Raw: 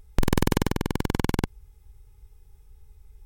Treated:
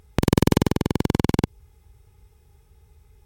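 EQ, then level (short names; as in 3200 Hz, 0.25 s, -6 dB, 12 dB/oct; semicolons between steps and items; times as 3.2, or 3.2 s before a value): HPF 81 Hz 12 dB/oct; dynamic EQ 1500 Hz, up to -6 dB, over -45 dBFS, Q 0.96; high shelf 6100 Hz -6 dB; +6.0 dB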